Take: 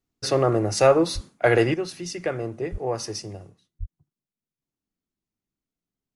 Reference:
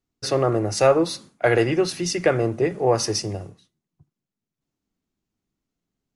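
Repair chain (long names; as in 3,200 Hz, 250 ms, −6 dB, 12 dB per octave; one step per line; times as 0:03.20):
0:01.14–0:01.26: high-pass filter 140 Hz 24 dB per octave
0:01.74: level correction +8 dB
0:02.71–0:02.83: high-pass filter 140 Hz 24 dB per octave
0:03.79–0:03.91: high-pass filter 140 Hz 24 dB per octave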